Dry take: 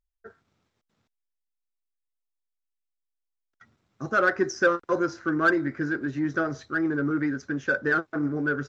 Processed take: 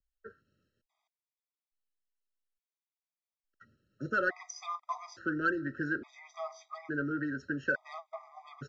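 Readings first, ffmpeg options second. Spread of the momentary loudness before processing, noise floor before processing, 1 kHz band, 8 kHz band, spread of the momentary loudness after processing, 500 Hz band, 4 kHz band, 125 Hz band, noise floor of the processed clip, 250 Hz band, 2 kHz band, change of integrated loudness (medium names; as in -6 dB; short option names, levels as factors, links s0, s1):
6 LU, -83 dBFS, -8.5 dB, no reading, 17 LU, -12.5 dB, -9.0 dB, -9.5 dB, under -85 dBFS, -11.0 dB, -8.5 dB, -9.5 dB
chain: -filter_complex "[0:a]lowpass=6100,acrossover=split=110|650|1800[s0][s1][s2][s3];[s0]acompressor=threshold=0.00398:ratio=4[s4];[s1]acompressor=threshold=0.0251:ratio=4[s5];[s2]acompressor=threshold=0.0398:ratio=4[s6];[s3]acompressor=threshold=0.0224:ratio=4[s7];[s4][s5][s6][s7]amix=inputs=4:normalize=0,afftfilt=real='re*gt(sin(2*PI*0.58*pts/sr)*(1-2*mod(floor(b*sr/1024/640),2)),0)':imag='im*gt(sin(2*PI*0.58*pts/sr)*(1-2*mod(floor(b*sr/1024/640),2)),0)':win_size=1024:overlap=0.75,volume=0.75"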